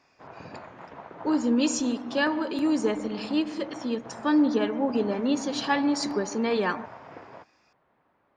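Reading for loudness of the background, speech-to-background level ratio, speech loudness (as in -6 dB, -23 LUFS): -44.0 LUFS, 17.5 dB, -26.5 LUFS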